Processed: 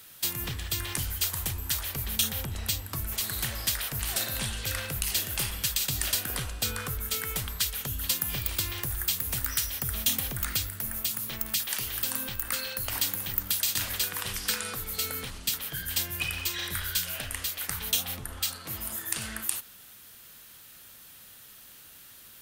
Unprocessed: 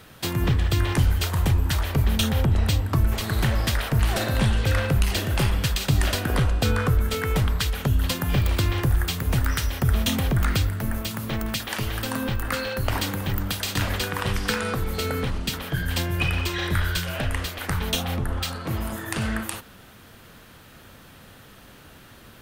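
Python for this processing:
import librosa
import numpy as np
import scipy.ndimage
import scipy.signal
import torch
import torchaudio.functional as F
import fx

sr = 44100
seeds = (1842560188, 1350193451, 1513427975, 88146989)

p1 = librosa.effects.preemphasis(x, coef=0.9, zi=[0.0])
p2 = 10.0 ** (-19.5 / 20.0) * np.tanh(p1 / 10.0 ** (-19.5 / 20.0))
y = p1 + (p2 * 10.0 ** (-3.5 / 20.0))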